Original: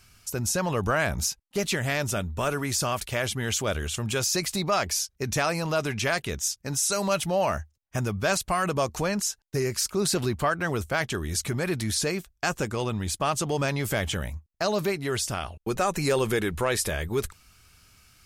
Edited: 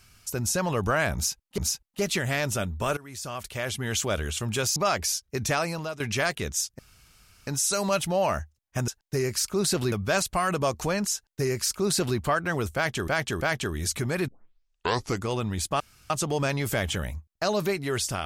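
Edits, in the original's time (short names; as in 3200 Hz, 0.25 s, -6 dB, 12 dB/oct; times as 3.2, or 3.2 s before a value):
1.15–1.58 loop, 2 plays
2.54–3.55 fade in, from -20 dB
4.33–4.63 cut
5.29–5.87 fade out equal-power, to -15.5 dB
6.66 insert room tone 0.68 s
9.29–10.33 copy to 8.07
10.9–11.23 loop, 3 plays
11.77 tape start 0.99 s
13.29 insert room tone 0.30 s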